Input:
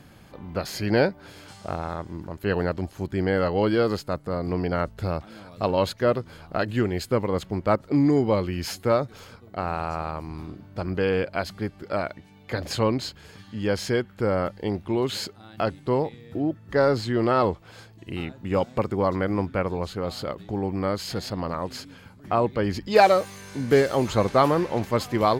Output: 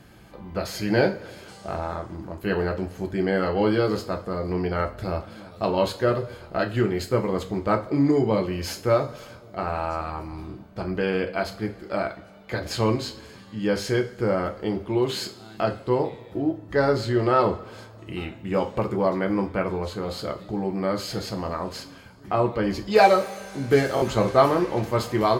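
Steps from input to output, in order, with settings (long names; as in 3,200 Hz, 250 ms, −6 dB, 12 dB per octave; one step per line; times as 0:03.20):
coupled-rooms reverb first 0.3 s, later 2 s, from −20 dB, DRR 2.5 dB
buffer that repeats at 0:23.95, samples 1,024, times 2
level −1.5 dB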